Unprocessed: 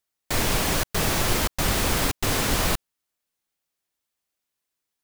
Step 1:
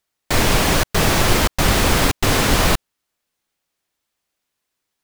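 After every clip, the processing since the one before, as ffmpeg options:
ffmpeg -i in.wav -af "highshelf=frequency=6900:gain=-6,volume=8dB" out.wav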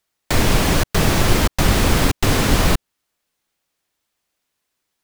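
ffmpeg -i in.wav -filter_complex "[0:a]acrossover=split=370[link_01][link_02];[link_02]acompressor=threshold=-24dB:ratio=2[link_03];[link_01][link_03]amix=inputs=2:normalize=0,volume=2dB" out.wav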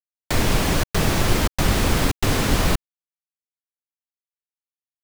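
ffmpeg -i in.wav -af "acrusher=bits=7:mix=0:aa=0.000001,volume=-3.5dB" out.wav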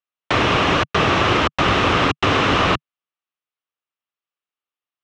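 ffmpeg -i in.wav -af "highpass=120,equalizer=frequency=150:width_type=q:width=4:gain=-6,equalizer=frequency=220:width_type=q:width=4:gain=-7,equalizer=frequency=1200:width_type=q:width=4:gain=8,equalizer=frequency=2800:width_type=q:width=4:gain=5,equalizer=frequency=4600:width_type=q:width=4:gain=-8,lowpass=frequency=4800:width=0.5412,lowpass=frequency=4800:width=1.3066,volume=5.5dB" out.wav

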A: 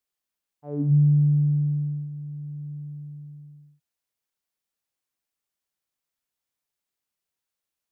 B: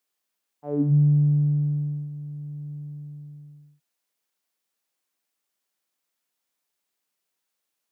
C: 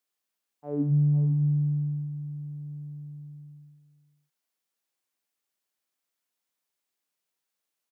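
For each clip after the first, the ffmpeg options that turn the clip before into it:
ffmpeg -i in.wav -af "highpass=190,volume=5.5dB" out.wav
ffmpeg -i in.wav -af "aecho=1:1:503:0.224,volume=-4dB" out.wav

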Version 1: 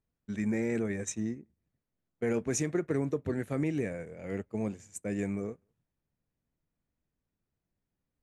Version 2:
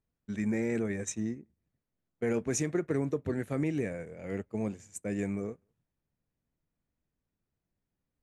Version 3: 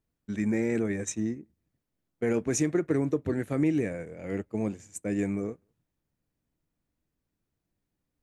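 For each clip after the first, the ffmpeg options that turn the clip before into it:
ffmpeg -i in.wav -af anull out.wav
ffmpeg -i in.wav -af "equalizer=frequency=310:width_type=o:width=0.24:gain=5.5,volume=2.5dB" out.wav

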